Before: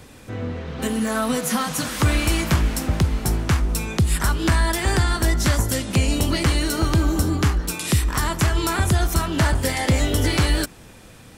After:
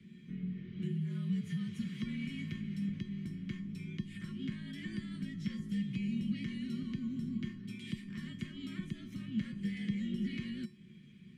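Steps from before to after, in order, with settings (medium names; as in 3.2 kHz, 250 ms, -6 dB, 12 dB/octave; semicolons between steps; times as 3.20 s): peaking EQ 210 Hz +14 dB 0.98 oct; in parallel at +1 dB: peak limiter -9.5 dBFS, peak gain reduction 10.5 dB; on the sum: compression 1.5:1, threshold -22 dBFS, peak gain reduction 7.5 dB; vowel filter i; frequency shift -62 Hz; feedback comb 360 Hz, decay 0.31 s, harmonics odd, mix 90%; trim +5.5 dB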